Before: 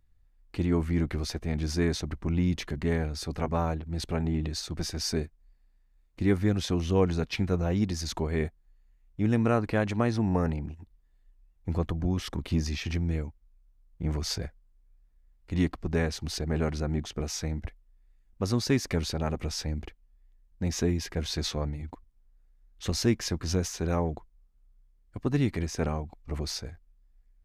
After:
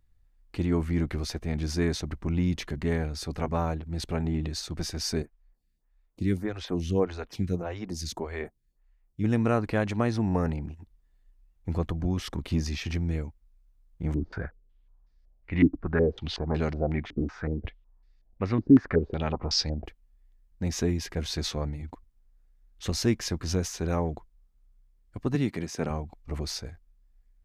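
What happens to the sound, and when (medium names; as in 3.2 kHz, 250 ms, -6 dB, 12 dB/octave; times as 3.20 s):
5.22–9.24 s: lamp-driven phase shifter 1.7 Hz
14.14–19.86 s: step-sequenced low-pass 5.4 Hz 290–4900 Hz
25.35–25.90 s: Chebyshev high-pass 160 Hz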